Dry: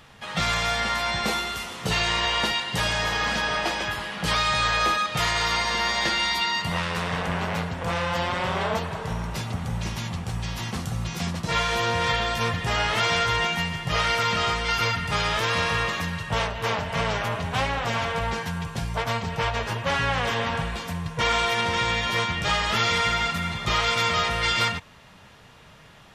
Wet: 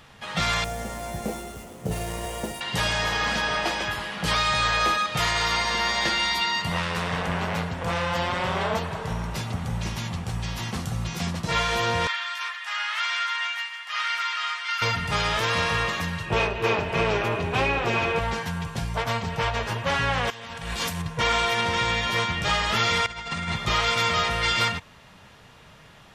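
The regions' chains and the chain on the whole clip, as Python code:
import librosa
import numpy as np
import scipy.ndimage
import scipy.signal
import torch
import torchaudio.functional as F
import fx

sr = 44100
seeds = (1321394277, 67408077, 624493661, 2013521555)

y = fx.chain(x, sr, fx.median_filter(points=9),
    fx.band_shelf(hz=2000.0, db=-13.0, octaves=2.6), at=(0.64, 2.61))
y = fx.chain(y, sr, fx.highpass(hz=1200.0, slope=24),
    fx.high_shelf(hz=4700.0, db=-10.5), at=(12.07, 14.82))
y = fx.chain(y, sr, fx.peak_eq(hz=11000.0, db=-5.0, octaves=1.9),
    fx.small_body(hz=(370.0, 2500.0), ring_ms=55, db=17), at=(16.25, 18.19))
y = fx.chain(y, sr, fx.high_shelf(hz=3100.0, db=10.5),
    fx.over_compress(threshold_db=-31.0, ratio=-0.5), at=(20.3, 21.02))
y = fx.chain(y, sr, fx.cheby1_lowpass(hz=9300.0, order=10),
    fx.over_compress(threshold_db=-30.0, ratio=-0.5), at=(23.06, 23.56))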